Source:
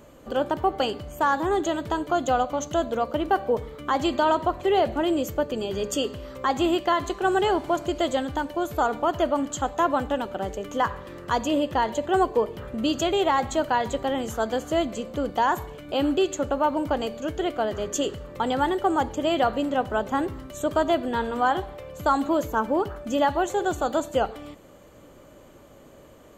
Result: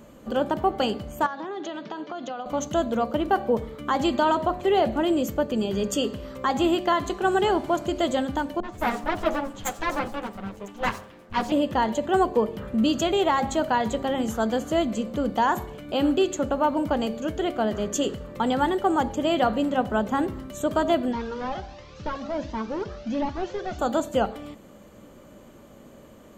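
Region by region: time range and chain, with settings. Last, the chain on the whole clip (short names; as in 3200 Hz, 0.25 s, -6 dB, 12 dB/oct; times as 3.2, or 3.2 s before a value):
1.26–2.46 Chebyshev band-pass 160–5700 Hz, order 4 + low shelf 380 Hz -7.5 dB + compressor 10:1, threshold -29 dBFS
8.6–11.52 minimum comb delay 9.5 ms + three bands offset in time lows, mids, highs 30/120 ms, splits 210/5200 Hz + three-band expander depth 70%
21.12–23.79 delta modulation 32 kbps, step -38.5 dBFS + cascading flanger rising 1.4 Hz
whole clip: bell 210 Hz +9.5 dB 0.46 oct; de-hum 90.29 Hz, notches 9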